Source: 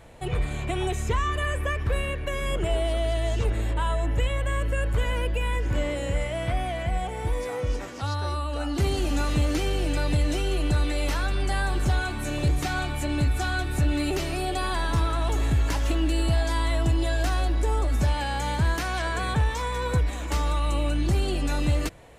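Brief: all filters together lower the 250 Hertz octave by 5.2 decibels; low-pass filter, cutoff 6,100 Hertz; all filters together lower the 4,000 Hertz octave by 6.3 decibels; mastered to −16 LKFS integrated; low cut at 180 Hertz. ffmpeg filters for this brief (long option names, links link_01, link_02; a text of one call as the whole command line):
ffmpeg -i in.wav -af "highpass=180,lowpass=6100,equalizer=frequency=250:width_type=o:gain=-6,equalizer=frequency=4000:width_type=o:gain=-8,volume=16.5dB" out.wav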